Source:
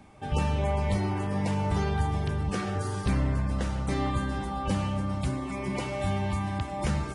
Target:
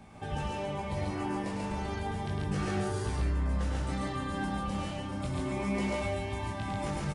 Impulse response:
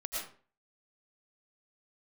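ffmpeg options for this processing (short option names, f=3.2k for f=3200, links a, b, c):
-af "alimiter=level_in=3.5dB:limit=-24dB:level=0:latency=1:release=97,volume=-3.5dB,flanger=delay=18:depth=6.4:speed=0.32,aecho=1:1:105|139.9:0.562|0.891,volume=3.5dB"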